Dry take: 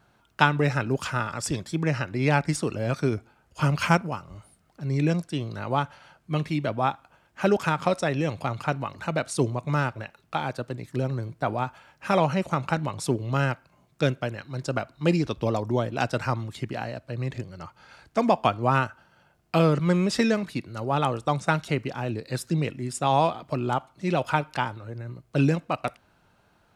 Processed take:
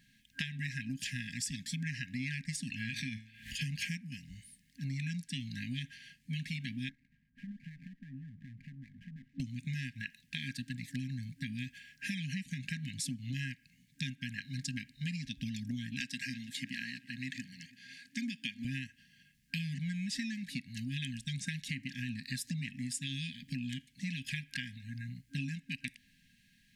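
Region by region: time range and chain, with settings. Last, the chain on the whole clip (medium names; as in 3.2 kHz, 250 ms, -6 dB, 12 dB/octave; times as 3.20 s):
2.70–3.61 s: high-order bell 1.8 kHz +9 dB 2.6 oct + feedback comb 110 Hz, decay 0.42 s + swell ahead of each attack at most 76 dB/s
6.89–9.40 s: low-pass 1.1 kHz 24 dB/octave + compression 2.5:1, threshold -44 dBFS + sliding maximum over 5 samples
16.00–18.65 s: high-pass 240 Hz + filtered feedback delay 333 ms, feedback 49%, low-pass 3.8 kHz, level -20 dB
whole clip: peaking EQ 81 Hz -12.5 dB 1.8 oct; FFT band-reject 270–1600 Hz; compression 12:1, threshold -37 dBFS; trim +2.5 dB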